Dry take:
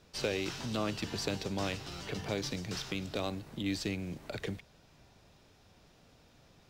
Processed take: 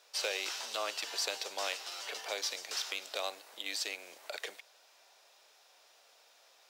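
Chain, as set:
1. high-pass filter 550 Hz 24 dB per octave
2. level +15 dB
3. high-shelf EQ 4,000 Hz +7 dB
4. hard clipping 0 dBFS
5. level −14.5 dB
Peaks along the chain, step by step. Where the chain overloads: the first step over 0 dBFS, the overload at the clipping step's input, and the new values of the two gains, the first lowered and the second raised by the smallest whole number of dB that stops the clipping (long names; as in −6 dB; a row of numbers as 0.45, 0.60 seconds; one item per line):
−20.0, −5.0, −2.0, −2.0, −16.5 dBFS
no step passes full scale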